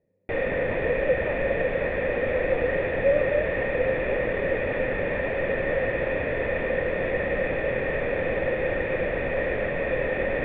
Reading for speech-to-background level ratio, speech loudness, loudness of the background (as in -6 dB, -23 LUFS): -4.0 dB, -30.5 LUFS, -26.5 LUFS